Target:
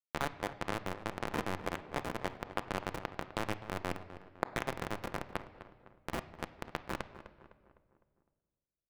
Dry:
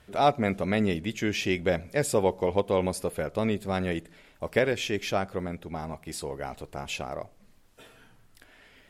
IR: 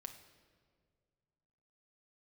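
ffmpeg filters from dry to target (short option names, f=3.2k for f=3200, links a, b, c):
-filter_complex "[0:a]asubboost=boost=5:cutoff=96,acrossover=split=2200[a][b];[a]acompressor=threshold=-37dB:ratio=12[c];[c][b]amix=inputs=2:normalize=0,alimiter=level_in=5dB:limit=-24dB:level=0:latency=1:release=92,volume=-5dB,acrusher=bits=4:mix=0:aa=0.000001,asplit=2[d][e];[e]highpass=f=720:p=1,volume=21dB,asoftclip=type=tanh:threshold=-23.5dB[f];[d][f]amix=inputs=2:normalize=0,lowpass=f=2.1k:p=1,volume=-6dB,asplit=2[g][h];[h]adelay=254,lowpass=f=2.1k:p=1,volume=-13.5dB,asplit=2[i][j];[j]adelay=254,lowpass=f=2.1k:p=1,volume=0.49,asplit=2[k][l];[l]adelay=254,lowpass=f=2.1k:p=1,volume=0.49,asplit=2[m][n];[n]adelay=254,lowpass=f=2.1k:p=1,volume=0.49,asplit=2[o][p];[p]adelay=254,lowpass=f=2.1k:p=1,volume=0.49[q];[g][i][k][m][o][q]amix=inputs=6:normalize=0,asplit=2[r][s];[1:a]atrim=start_sample=2205,lowpass=3.1k[t];[s][t]afir=irnorm=-1:irlink=0,volume=5.5dB[u];[r][u]amix=inputs=2:normalize=0,adynamicequalizer=threshold=0.00158:dfrequency=1600:dqfactor=0.7:tfrequency=1600:tqfactor=0.7:attack=5:release=100:ratio=0.375:range=1.5:mode=cutabove:tftype=highshelf,volume=7dB"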